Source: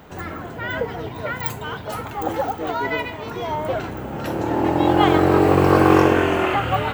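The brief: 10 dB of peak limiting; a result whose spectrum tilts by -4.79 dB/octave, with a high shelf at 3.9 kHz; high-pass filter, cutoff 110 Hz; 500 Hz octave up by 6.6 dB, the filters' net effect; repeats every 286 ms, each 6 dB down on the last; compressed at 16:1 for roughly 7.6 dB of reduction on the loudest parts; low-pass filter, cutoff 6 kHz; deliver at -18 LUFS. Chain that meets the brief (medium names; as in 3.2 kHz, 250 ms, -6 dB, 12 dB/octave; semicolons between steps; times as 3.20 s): high-pass 110 Hz; low-pass 6 kHz; peaking EQ 500 Hz +8.5 dB; treble shelf 3.9 kHz -3 dB; compression 16:1, threshold -12 dBFS; peak limiter -13.5 dBFS; feedback delay 286 ms, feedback 50%, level -6 dB; trim +5 dB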